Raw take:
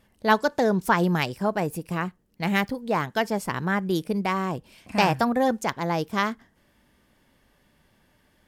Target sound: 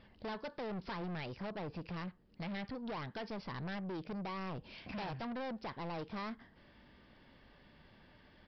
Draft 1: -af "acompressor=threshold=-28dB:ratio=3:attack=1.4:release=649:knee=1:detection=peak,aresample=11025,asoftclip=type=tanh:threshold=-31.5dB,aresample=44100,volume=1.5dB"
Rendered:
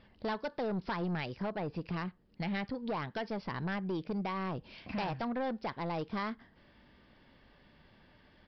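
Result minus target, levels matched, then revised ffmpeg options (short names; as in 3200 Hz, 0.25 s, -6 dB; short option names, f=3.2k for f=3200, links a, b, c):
soft clip: distortion -5 dB
-af "acompressor=threshold=-28dB:ratio=3:attack=1.4:release=649:knee=1:detection=peak,aresample=11025,asoftclip=type=tanh:threshold=-40.5dB,aresample=44100,volume=1.5dB"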